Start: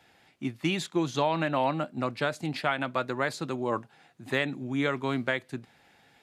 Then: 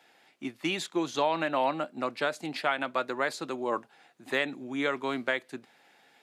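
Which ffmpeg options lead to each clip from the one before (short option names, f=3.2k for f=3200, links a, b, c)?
-af "highpass=290"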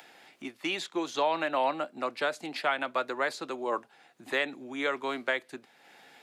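-filter_complex "[0:a]acrossover=split=290|620|6000[a][b][c][d];[a]acompressor=threshold=-51dB:ratio=5[e];[d]alimiter=level_in=17dB:limit=-24dB:level=0:latency=1:release=222,volume=-17dB[f];[e][b][c][f]amix=inputs=4:normalize=0,acompressor=mode=upward:threshold=-47dB:ratio=2.5"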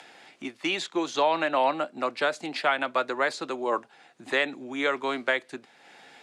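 -af "lowpass=f=9.7k:w=0.5412,lowpass=f=9.7k:w=1.3066,volume=4dB"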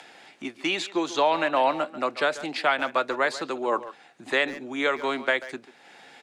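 -filter_complex "[0:a]asplit=2[a][b];[b]adelay=140,highpass=300,lowpass=3.4k,asoftclip=type=hard:threshold=-19.5dB,volume=-14dB[c];[a][c]amix=inputs=2:normalize=0,volume=1.5dB"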